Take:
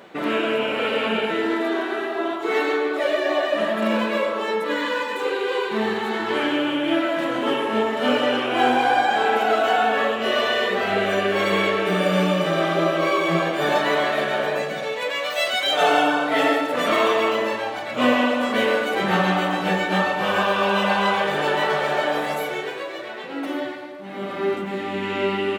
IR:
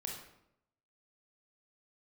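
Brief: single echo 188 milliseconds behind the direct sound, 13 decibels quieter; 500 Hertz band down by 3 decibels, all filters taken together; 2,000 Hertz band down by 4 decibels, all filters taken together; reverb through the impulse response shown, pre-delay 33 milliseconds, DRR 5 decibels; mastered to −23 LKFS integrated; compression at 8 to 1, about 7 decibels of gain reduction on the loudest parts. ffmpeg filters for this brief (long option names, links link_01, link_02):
-filter_complex "[0:a]equalizer=frequency=500:width_type=o:gain=-3.5,equalizer=frequency=2000:width_type=o:gain=-5,acompressor=threshold=-23dB:ratio=8,aecho=1:1:188:0.224,asplit=2[link_01][link_02];[1:a]atrim=start_sample=2205,adelay=33[link_03];[link_02][link_03]afir=irnorm=-1:irlink=0,volume=-4dB[link_04];[link_01][link_04]amix=inputs=2:normalize=0,volume=3dB"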